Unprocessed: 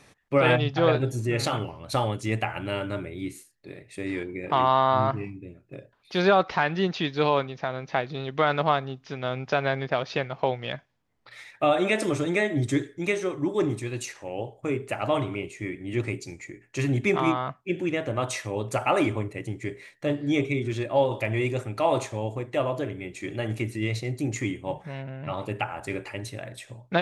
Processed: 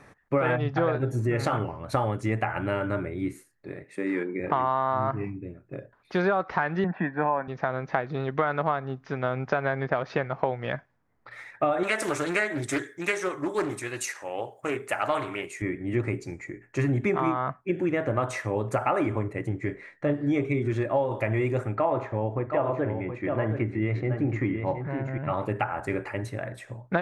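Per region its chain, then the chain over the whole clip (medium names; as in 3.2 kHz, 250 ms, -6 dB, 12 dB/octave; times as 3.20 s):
3.84–4.40 s: steep high-pass 160 Hz + band-stop 680 Hz, Q 6.6
6.84–7.48 s: Chebyshev band-pass 180–1900 Hz, order 3 + comb 1.2 ms, depth 63%
11.83–15.62 s: tilt EQ +4 dB/octave + loudspeaker Doppler distortion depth 0.29 ms
19.49–20.14 s: distance through air 70 m + doubling 21 ms -9 dB
21.75–25.18 s: low-pass 2.5 kHz + delay 721 ms -8.5 dB
whole clip: resonant high shelf 2.3 kHz -9.5 dB, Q 1.5; compression 5:1, threshold -25 dBFS; trim +3.5 dB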